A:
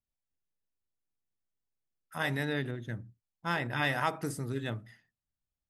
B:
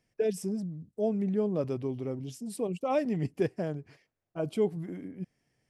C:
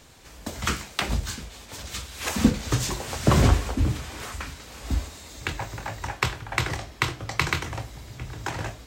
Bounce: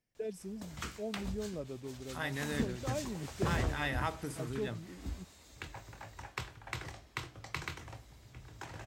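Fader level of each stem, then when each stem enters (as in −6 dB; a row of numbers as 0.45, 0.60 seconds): −5.5, −11.0, −15.5 decibels; 0.00, 0.00, 0.15 seconds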